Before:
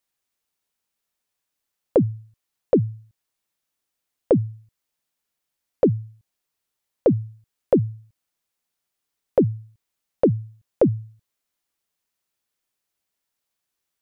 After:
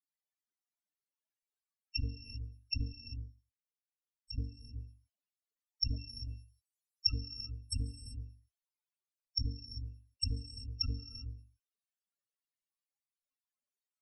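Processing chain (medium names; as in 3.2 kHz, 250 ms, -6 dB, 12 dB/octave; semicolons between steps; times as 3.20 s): bit-reversed sample order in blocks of 256 samples; low-pass that closes with the level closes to 1.8 kHz, closed at -16.5 dBFS; 2.93–4.38 s: level held to a coarse grid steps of 18 dB; 5.86–7.12 s: treble shelf 2.2 kHz +7 dB; loudest bins only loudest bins 8; gated-style reverb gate 410 ms rising, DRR 10 dB; trim -3 dB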